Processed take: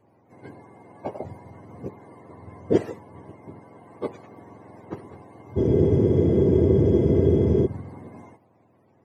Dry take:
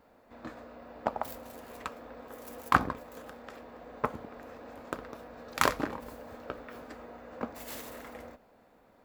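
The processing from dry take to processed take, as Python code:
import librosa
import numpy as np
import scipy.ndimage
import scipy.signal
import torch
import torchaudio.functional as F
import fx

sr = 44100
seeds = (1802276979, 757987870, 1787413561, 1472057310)

y = fx.octave_mirror(x, sr, pivot_hz=710.0)
y = fx.tilt_shelf(y, sr, db=7.5, hz=1100.0)
y = fx.spec_freeze(y, sr, seeds[0], at_s=5.59, hold_s=2.06)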